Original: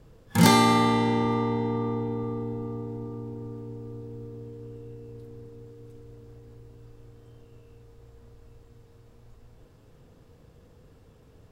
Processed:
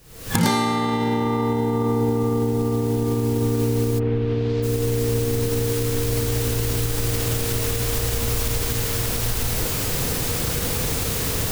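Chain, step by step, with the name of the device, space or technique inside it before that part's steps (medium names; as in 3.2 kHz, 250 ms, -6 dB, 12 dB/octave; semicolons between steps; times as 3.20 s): cheap recorder with automatic gain (white noise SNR 25 dB; recorder AGC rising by 74 dB/s); 3.98–4.62 s: low-pass 2.5 kHz -> 4.9 kHz 24 dB/octave; trim -2 dB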